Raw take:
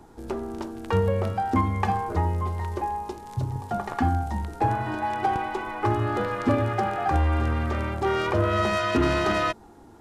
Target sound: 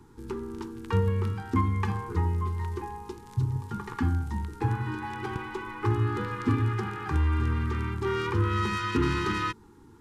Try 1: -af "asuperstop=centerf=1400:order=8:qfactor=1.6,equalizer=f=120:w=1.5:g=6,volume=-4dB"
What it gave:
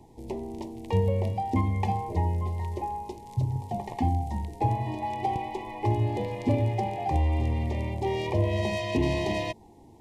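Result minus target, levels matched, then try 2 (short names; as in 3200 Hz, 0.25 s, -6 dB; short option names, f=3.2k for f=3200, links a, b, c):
500 Hz band +3.0 dB
-af "asuperstop=centerf=640:order=8:qfactor=1.6,equalizer=f=120:w=1.5:g=6,volume=-4dB"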